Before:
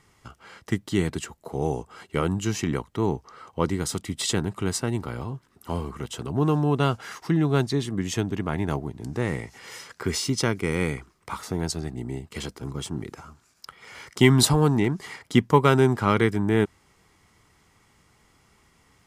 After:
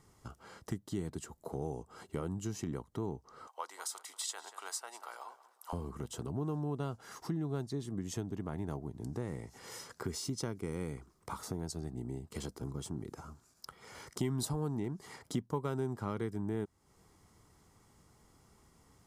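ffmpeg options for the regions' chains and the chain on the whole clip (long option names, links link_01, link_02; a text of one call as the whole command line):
ffmpeg -i in.wav -filter_complex "[0:a]asettb=1/sr,asplit=3[link_01][link_02][link_03];[link_01]atrim=end=3.474[link_04];[link_02]atrim=start=3.47:end=5.73,asetpts=PTS-STARTPTS,afade=type=in:duration=0.004:curve=qsin,afade=type=out:start_time=2.256:duration=0.004:curve=qsin,highpass=frequency=770:width=0.5412,highpass=frequency=770:width=1.3066,asplit=2[link_05][link_06];[link_06]adelay=187,lowpass=frequency=4700:poles=1,volume=-16dB,asplit=2[link_07][link_08];[link_08]adelay=187,lowpass=frequency=4700:poles=1,volume=0.35,asplit=2[link_09][link_10];[link_10]adelay=187,lowpass=frequency=4700:poles=1,volume=0.35[link_11];[link_05][link_07][link_09][link_11]amix=inputs=4:normalize=0,atrim=end_sample=99666[link_12];[link_03]atrim=start=5.726[link_13];[link_04][link_12]acrossfade=duration=0.004:curve1=hsin:curve2=qsin[link_14];[link_14][link_13]acrossfade=duration=0.004:curve1=qsin:curve2=hsin,equalizer=frequency=2400:width=0.87:gain=-11,acompressor=threshold=-37dB:ratio=2.5,volume=-2dB" out.wav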